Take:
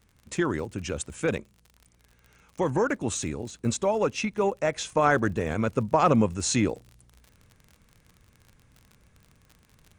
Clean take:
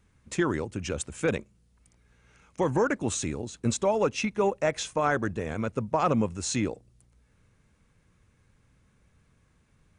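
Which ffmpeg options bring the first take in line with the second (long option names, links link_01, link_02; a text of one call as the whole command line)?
ffmpeg -i in.wav -af "adeclick=threshold=4,asetnsamples=nb_out_samples=441:pad=0,asendcmd='4.92 volume volume -4dB',volume=0dB" out.wav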